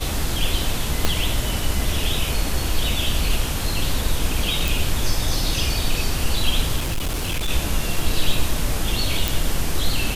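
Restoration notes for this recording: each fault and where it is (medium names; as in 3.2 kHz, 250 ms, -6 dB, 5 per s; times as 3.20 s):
1.05 s: pop -3 dBFS
4.68 s: pop
6.77–7.49 s: clipped -19.5 dBFS
9.28 s: pop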